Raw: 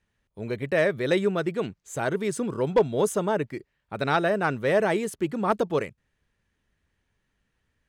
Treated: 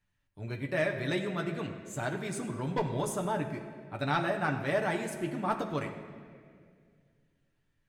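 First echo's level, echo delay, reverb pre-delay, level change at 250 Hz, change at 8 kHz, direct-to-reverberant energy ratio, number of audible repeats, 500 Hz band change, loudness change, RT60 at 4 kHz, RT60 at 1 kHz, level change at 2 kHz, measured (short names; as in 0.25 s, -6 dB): none, none, 7 ms, -6.0 dB, -5.0 dB, 1.5 dB, none, -9.5 dB, -7.5 dB, 1.5 s, 1.8 s, -5.0 dB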